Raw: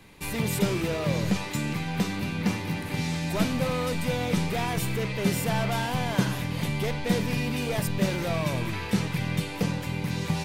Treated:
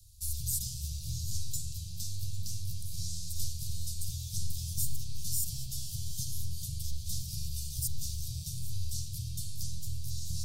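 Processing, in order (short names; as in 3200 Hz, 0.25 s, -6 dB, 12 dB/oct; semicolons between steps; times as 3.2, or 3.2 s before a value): inverse Chebyshev band-stop 220–2200 Hz, stop band 50 dB; echo with dull and thin repeats by turns 0.4 s, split 850 Hz, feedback 54%, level -12 dB; spring tank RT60 2.9 s, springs 42/51 ms, chirp 75 ms, DRR 4 dB; gain +2.5 dB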